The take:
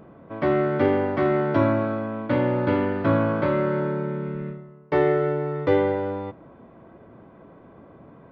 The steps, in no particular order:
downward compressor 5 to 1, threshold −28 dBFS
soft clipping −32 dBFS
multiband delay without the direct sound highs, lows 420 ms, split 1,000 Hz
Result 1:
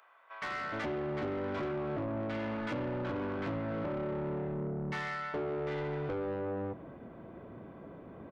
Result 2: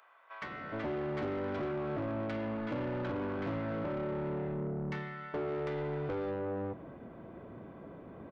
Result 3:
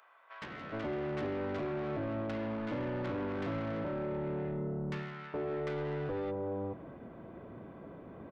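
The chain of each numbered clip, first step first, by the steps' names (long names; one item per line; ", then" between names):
multiband delay without the direct sound, then downward compressor, then soft clipping
downward compressor, then multiband delay without the direct sound, then soft clipping
downward compressor, then soft clipping, then multiband delay without the direct sound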